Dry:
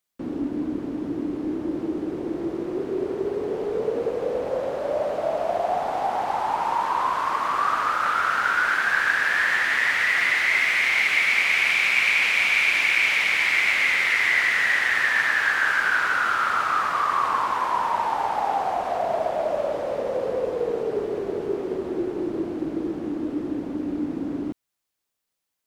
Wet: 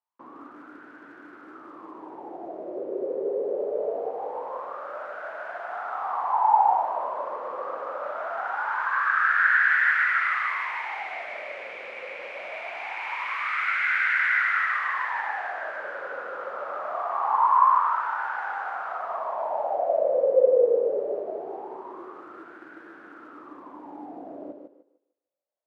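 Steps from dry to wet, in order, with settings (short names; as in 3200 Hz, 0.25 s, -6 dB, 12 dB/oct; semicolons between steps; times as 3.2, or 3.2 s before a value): short-mantissa float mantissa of 4-bit; thinning echo 0.151 s, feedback 30%, high-pass 240 Hz, level -5 dB; wah 0.23 Hz 520–1500 Hz, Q 8.2; gain +9 dB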